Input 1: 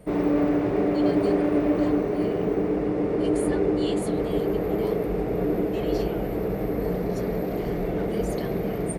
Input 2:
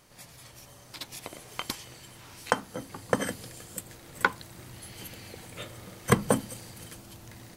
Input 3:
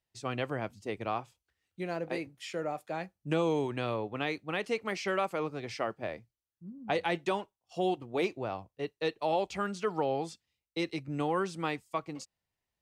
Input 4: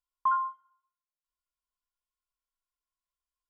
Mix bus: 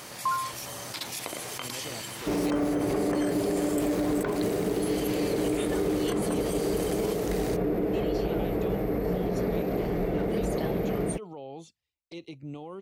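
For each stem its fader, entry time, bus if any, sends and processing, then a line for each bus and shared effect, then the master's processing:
-0.5 dB, 2.20 s, no send, dry
-14.5 dB, 0.00 s, no send, AGC gain up to 8.5 dB; HPF 250 Hz 6 dB/oct; fast leveller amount 70%
-2.5 dB, 1.35 s, no send, limiter -28 dBFS, peak gain reduction 10 dB; envelope flanger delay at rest 5.1 ms, full sweep at -36.5 dBFS
-1.5 dB, 0.00 s, no send, dry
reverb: off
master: limiter -19 dBFS, peak gain reduction 8.5 dB

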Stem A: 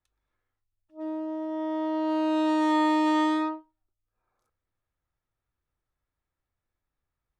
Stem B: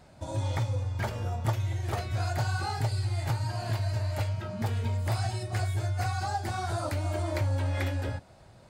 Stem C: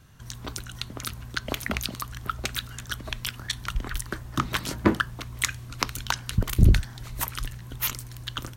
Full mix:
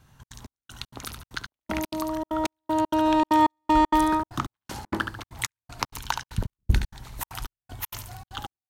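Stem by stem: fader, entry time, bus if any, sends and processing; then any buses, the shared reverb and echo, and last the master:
+2.0 dB, 0.70 s, no send, no echo send, dry
-15.5 dB, 2.10 s, muted 5.91–7.3, no send, no echo send, dry
-4.0 dB, 0.00 s, no send, echo send -6.5 dB, dry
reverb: off
echo: feedback echo 71 ms, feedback 37%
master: bell 870 Hz +9 dB 0.41 oct; step gate "xxx.xx...xx.x" 195 bpm -60 dB

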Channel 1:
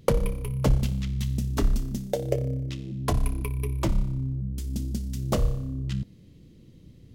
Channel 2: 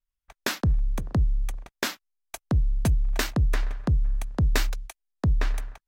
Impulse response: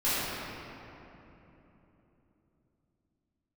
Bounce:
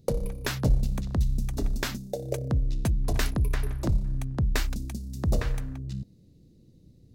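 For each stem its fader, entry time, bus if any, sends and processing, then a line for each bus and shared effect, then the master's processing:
-5.0 dB, 0.00 s, no send, band shelf 1600 Hz -10 dB; notch 3200 Hz, Q 5.2
-3.5 dB, 0.00 s, no send, dry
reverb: off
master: dry

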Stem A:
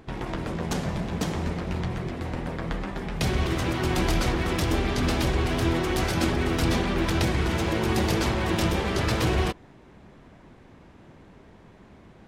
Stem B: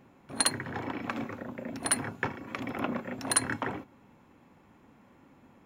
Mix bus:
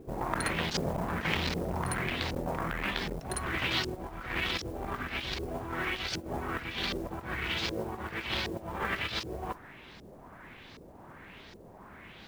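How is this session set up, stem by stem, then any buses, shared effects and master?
-0.5 dB, 0.00 s, no send, tilt shelf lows -7.5 dB, about 1400 Hz; negative-ratio compressor -32 dBFS, ratio -0.5; LFO low-pass saw up 1.3 Hz 390–5300 Hz
-11.0 dB, 0.00 s, no send, dry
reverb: off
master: modulation noise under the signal 24 dB; core saturation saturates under 860 Hz

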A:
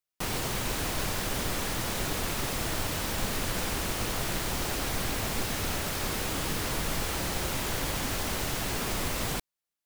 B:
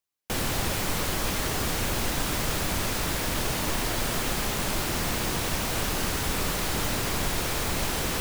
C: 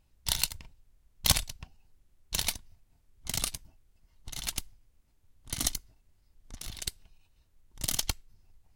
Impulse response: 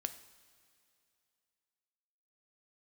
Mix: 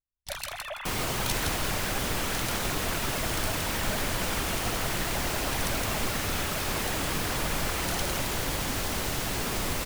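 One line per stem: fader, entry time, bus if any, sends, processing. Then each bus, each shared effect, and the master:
+1.0 dB, 0.65 s, no send, no echo send, dry
-11.5 dB, 0.00 s, no send, echo send -8 dB, sine-wave speech; Chebyshev high-pass 270 Hz, order 10
-9.5 dB, 0.00 s, no send, echo send -4 dB, dry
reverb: off
echo: feedback echo 0.165 s, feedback 31%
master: gate with hold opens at -45 dBFS

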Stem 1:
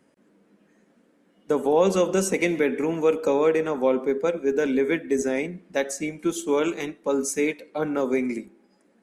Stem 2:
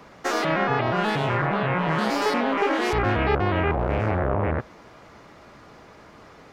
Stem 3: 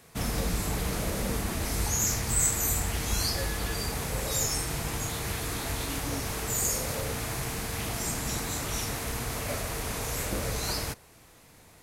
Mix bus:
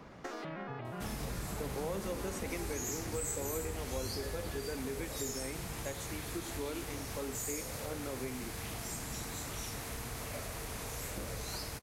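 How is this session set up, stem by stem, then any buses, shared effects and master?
-8.0 dB, 0.10 s, no send, dry
-7.5 dB, 0.00 s, no send, low shelf 340 Hz +8 dB; compressor, threshold -26 dBFS, peak gain reduction 12.5 dB
-1.5 dB, 0.85 s, no send, dry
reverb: off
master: compressor 2:1, threshold -44 dBFS, peak gain reduction 12.5 dB

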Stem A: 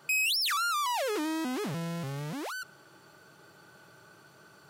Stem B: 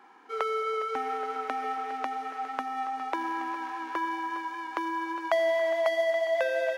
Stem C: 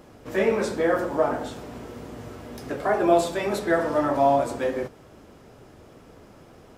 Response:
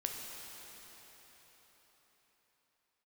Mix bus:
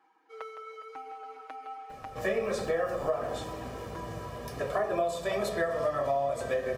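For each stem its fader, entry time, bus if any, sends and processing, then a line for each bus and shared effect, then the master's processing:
-13.5 dB, 2.20 s, no send, no echo send, median filter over 41 samples; limiter -32.5 dBFS, peak gain reduction 5 dB
-17.0 dB, 0.00 s, send -7 dB, echo send -7 dB, reverb removal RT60 0.69 s; comb 6.3 ms, depth 84%
-3.0 dB, 1.90 s, no send, no echo send, comb 1.7 ms, depth 73%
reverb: on, RT60 4.8 s, pre-delay 9 ms
echo: echo 0.162 s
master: compressor 6:1, threshold -26 dBFS, peak gain reduction 11.5 dB

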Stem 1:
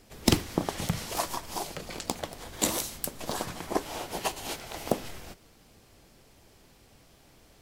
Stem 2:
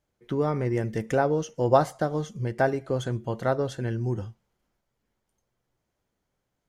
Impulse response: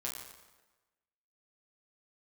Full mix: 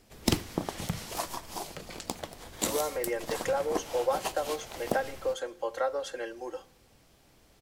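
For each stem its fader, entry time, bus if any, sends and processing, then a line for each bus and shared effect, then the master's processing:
-4.0 dB, 0.00 s, send -22 dB, dry
-1.5 dB, 2.35 s, send -20 dB, steep high-pass 400 Hz 36 dB/oct; comb 3.7 ms, depth 98%; compressor 3:1, threshold -27 dBFS, peak gain reduction 12 dB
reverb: on, RT60 1.2 s, pre-delay 7 ms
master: dry

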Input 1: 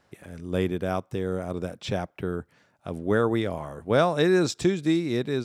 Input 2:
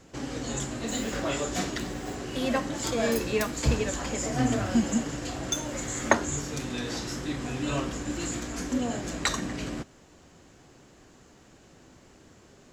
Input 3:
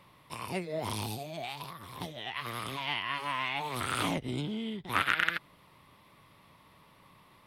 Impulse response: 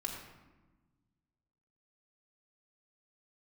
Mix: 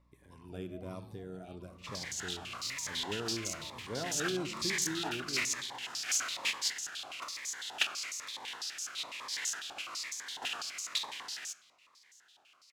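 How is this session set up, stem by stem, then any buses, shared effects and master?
-18.5 dB, 0.00 s, send -6 dB, hum 60 Hz, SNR 27 dB
+2.0 dB, 1.70 s, send -13 dB, spectral contrast lowered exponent 0.26; stepped band-pass 12 Hz 860–6400 Hz
-16.5 dB, 0.00 s, no send, spectral contrast raised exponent 1.6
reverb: on, RT60 1.2 s, pre-delay 3 ms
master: cascading phaser falling 1.1 Hz

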